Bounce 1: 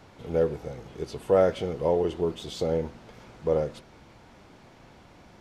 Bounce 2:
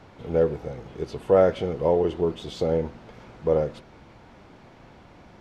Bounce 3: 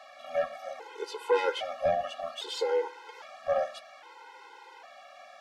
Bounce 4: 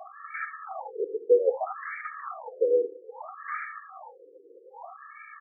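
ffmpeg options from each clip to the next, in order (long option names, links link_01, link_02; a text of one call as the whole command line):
ffmpeg -i in.wav -af "highshelf=frequency=5400:gain=-11,volume=3dB" out.wav
ffmpeg -i in.wav -af "highpass=frequency=600:width=0.5412,highpass=frequency=600:width=1.3066,asoftclip=type=tanh:threshold=-23dB,afftfilt=real='re*gt(sin(2*PI*0.62*pts/sr)*(1-2*mod(floor(b*sr/1024/270),2)),0)':imag='im*gt(sin(2*PI*0.62*pts/sr)*(1-2*mod(floor(b*sr/1024/270),2)),0)':win_size=1024:overlap=0.75,volume=7.5dB" out.wav
ffmpeg -i in.wav -filter_complex "[0:a]asplit=2[link_01][link_02];[link_02]aeval=exprs='(mod(31.6*val(0)+1,2)-1)/31.6':channel_layout=same,volume=-4.5dB[link_03];[link_01][link_03]amix=inputs=2:normalize=0,aecho=1:1:74:0.211,afftfilt=real='re*between(b*sr/1024,360*pow(1700/360,0.5+0.5*sin(2*PI*0.62*pts/sr))/1.41,360*pow(1700/360,0.5+0.5*sin(2*PI*0.62*pts/sr))*1.41)':imag='im*between(b*sr/1024,360*pow(1700/360,0.5+0.5*sin(2*PI*0.62*pts/sr))/1.41,360*pow(1700/360,0.5+0.5*sin(2*PI*0.62*pts/sr))*1.41)':win_size=1024:overlap=0.75,volume=6dB" out.wav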